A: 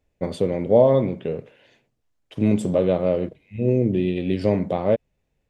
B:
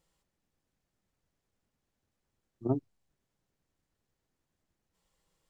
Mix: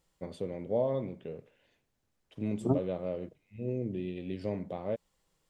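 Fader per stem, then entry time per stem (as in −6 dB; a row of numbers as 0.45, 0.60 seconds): −14.5, +1.5 decibels; 0.00, 0.00 seconds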